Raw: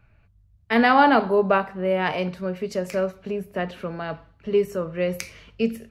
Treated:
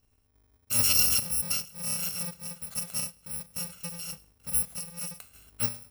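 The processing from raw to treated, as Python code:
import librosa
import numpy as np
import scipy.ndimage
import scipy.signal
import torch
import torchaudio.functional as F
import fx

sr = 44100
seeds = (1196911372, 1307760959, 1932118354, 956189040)

y = fx.bit_reversed(x, sr, seeds[0], block=128)
y = fx.tremolo_random(y, sr, seeds[1], hz=3.0, depth_pct=55)
y = y * 10.0 ** (-6.5 / 20.0)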